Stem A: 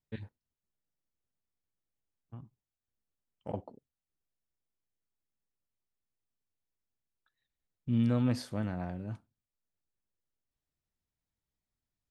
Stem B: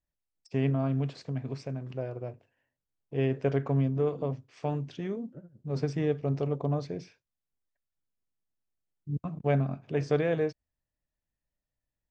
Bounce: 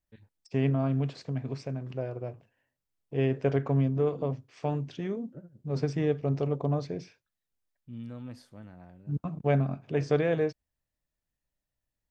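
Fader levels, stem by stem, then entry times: −13.0, +1.0 decibels; 0.00, 0.00 seconds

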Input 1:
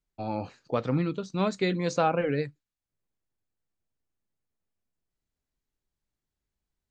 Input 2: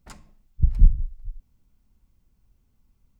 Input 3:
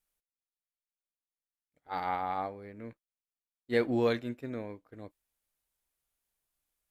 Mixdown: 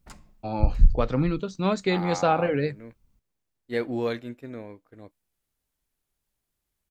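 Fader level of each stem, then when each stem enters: +2.5, −2.0, 0.0 decibels; 0.25, 0.00, 0.00 seconds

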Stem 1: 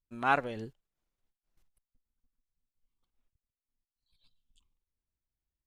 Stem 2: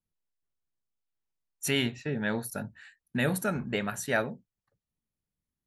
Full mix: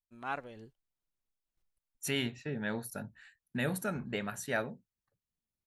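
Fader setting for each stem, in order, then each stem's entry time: −10.5, −5.5 decibels; 0.00, 0.40 seconds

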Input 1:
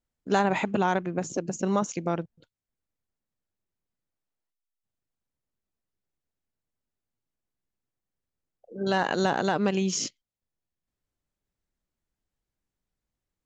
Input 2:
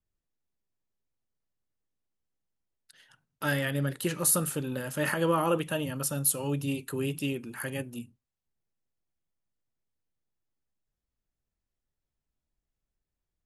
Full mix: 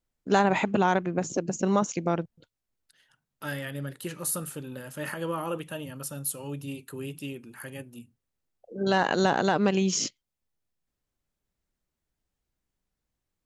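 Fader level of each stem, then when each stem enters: +1.5, −5.5 decibels; 0.00, 0.00 seconds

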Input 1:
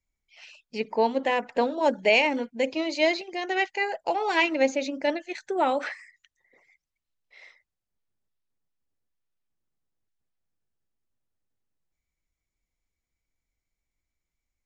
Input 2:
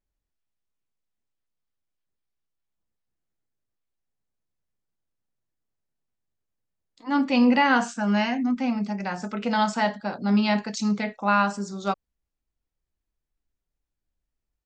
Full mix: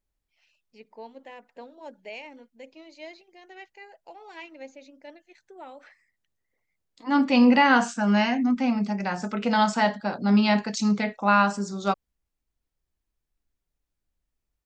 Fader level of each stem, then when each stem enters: −19.5, +1.5 decibels; 0.00, 0.00 seconds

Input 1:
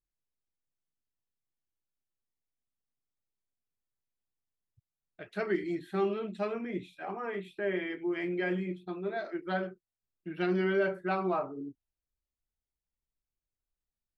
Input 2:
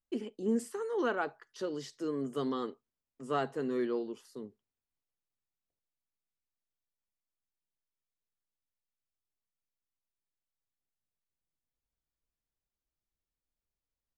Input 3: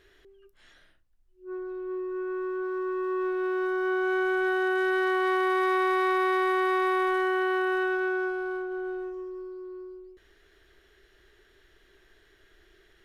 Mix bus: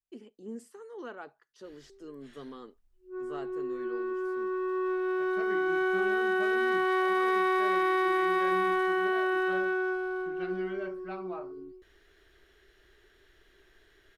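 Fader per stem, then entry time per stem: −10.0, −10.5, −1.5 decibels; 0.00, 0.00, 1.65 seconds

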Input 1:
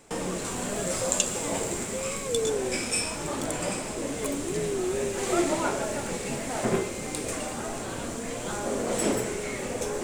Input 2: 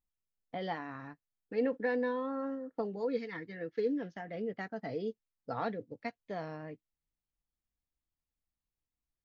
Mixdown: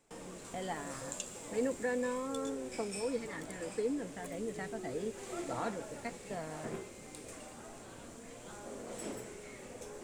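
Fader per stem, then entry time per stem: −16.5, −2.5 decibels; 0.00, 0.00 seconds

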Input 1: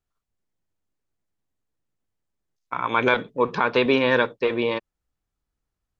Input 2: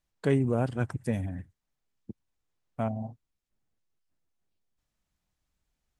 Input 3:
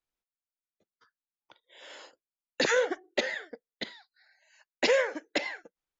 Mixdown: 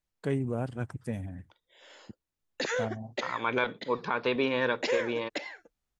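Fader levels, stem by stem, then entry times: −8.5, −5.0, −6.0 decibels; 0.50, 0.00, 0.00 seconds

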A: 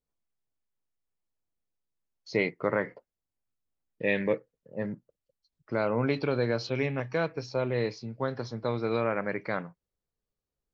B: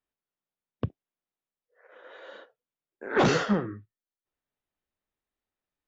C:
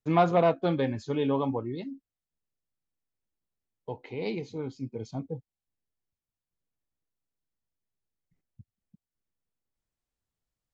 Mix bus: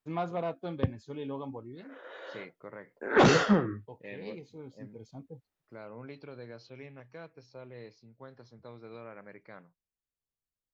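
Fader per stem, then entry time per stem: −18.0, +1.5, −11.0 decibels; 0.00, 0.00, 0.00 seconds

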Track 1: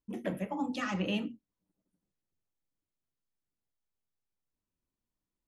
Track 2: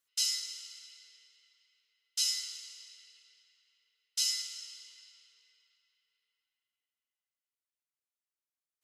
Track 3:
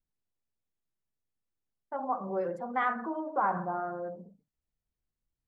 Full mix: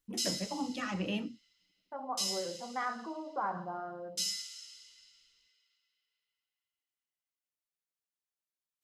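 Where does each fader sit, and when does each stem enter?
−2.5, −4.0, −6.5 decibels; 0.00, 0.00, 0.00 seconds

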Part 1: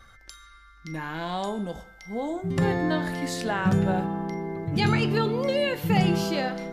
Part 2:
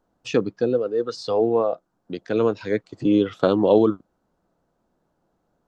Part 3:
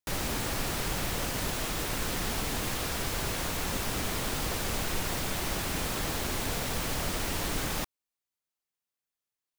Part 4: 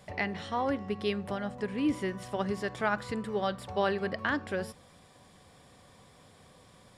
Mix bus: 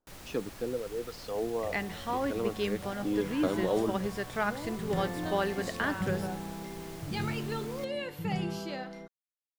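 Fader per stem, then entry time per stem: −11.0, −13.0, −16.0, −1.5 decibels; 2.35, 0.00, 0.00, 1.55 seconds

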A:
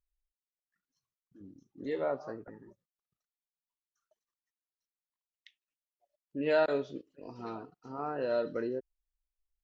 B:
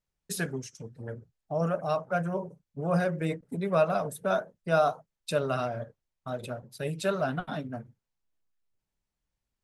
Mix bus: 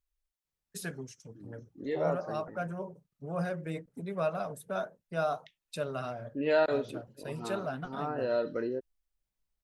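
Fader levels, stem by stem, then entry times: +1.0, −7.0 decibels; 0.00, 0.45 seconds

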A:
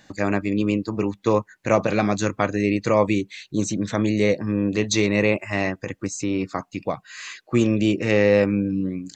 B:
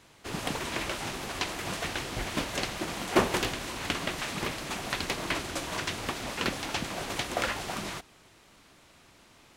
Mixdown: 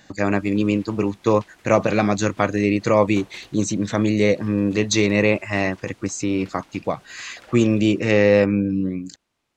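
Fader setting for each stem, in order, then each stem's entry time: +2.0, −18.5 decibels; 0.00, 0.00 seconds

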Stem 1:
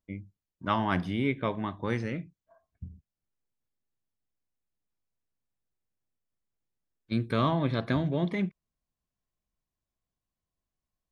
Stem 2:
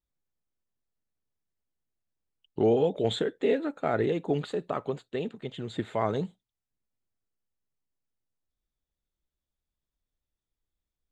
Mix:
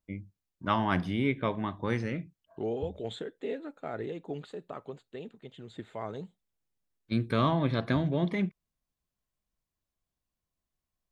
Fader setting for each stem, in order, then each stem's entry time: 0.0, −10.0 decibels; 0.00, 0.00 seconds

